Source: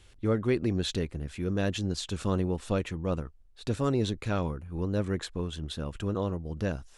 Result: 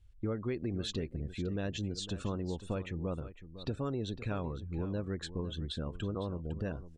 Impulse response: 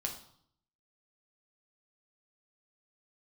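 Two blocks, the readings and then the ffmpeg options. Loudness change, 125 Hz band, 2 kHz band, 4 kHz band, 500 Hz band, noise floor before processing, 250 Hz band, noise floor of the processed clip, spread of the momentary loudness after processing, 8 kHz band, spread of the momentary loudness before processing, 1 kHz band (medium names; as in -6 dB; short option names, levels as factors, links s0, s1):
-6.5 dB, -6.0 dB, -7.5 dB, -5.0 dB, -7.5 dB, -56 dBFS, -6.5 dB, -53 dBFS, 3 LU, -7.0 dB, 7 LU, -7.5 dB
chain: -filter_complex "[0:a]afftdn=nr=22:nf=-45,acompressor=threshold=0.0224:ratio=4,asplit=2[s0][s1];[s1]aecho=0:1:506:0.211[s2];[s0][s2]amix=inputs=2:normalize=0"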